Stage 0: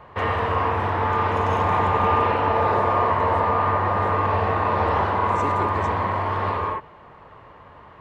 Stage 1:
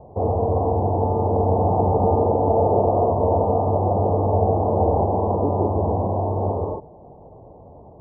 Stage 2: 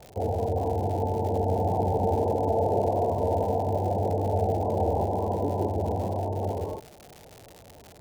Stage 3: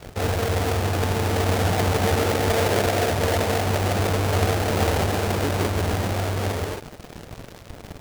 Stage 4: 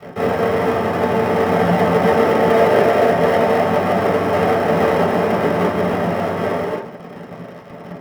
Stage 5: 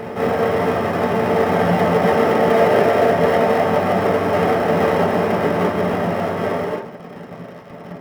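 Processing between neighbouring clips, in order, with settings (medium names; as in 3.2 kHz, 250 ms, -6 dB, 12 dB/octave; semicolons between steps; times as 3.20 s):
elliptic low-pass 770 Hz, stop band 50 dB; trim +6 dB
spectral gate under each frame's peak -20 dB strong; crackle 180 per s -28 dBFS; trim -6.5 dB
square wave that keeps the level
reverberation RT60 0.30 s, pre-delay 3 ms, DRR -3.5 dB; trim -8.5 dB
reverse echo 1194 ms -12.5 dB; trim -1 dB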